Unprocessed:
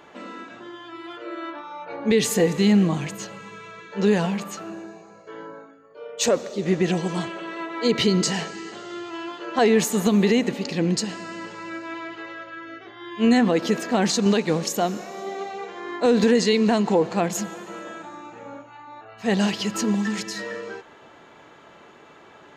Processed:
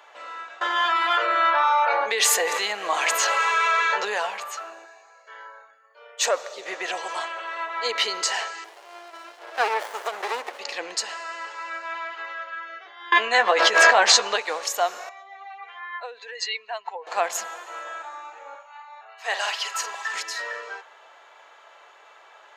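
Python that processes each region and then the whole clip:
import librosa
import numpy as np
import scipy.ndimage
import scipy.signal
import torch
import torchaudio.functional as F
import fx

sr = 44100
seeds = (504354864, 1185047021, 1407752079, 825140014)

y = fx.chain(x, sr, fx.low_shelf(hz=180.0, db=-5.0),
    fx.env_flatten(amount_pct=70), at=(0.61, 4.05))
y = fx.chain(y, sr, fx.highpass(hz=840.0, slope=6),
    fx.peak_eq(hz=1800.0, db=6.0, octaves=0.32), at=(4.85, 6.25))
y = fx.chain(y, sr, fx.highpass(hz=280.0, slope=24),
    fx.running_max(window=33), at=(8.64, 10.59))
y = fx.chain(y, sr, fx.air_absorb(metres=62.0),
    fx.doubler(ms=14.0, db=-7.0),
    fx.env_flatten(amount_pct=100), at=(13.12, 14.36))
y = fx.chain(y, sr, fx.spec_expand(power=1.7),
    fx.highpass(hz=1100.0, slope=12),
    fx.peak_eq(hz=2600.0, db=8.0, octaves=1.2), at=(15.09, 17.07))
y = fx.chain(y, sr, fx.highpass(hz=620.0, slope=12),
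    fx.doubler(ms=48.0, db=-10), at=(18.55, 20.14))
y = scipy.signal.sosfilt(scipy.signal.butter(4, 600.0, 'highpass', fs=sr, output='sos'), y)
y = fx.dynamic_eq(y, sr, hz=1300.0, q=0.86, threshold_db=-43.0, ratio=4.0, max_db=5)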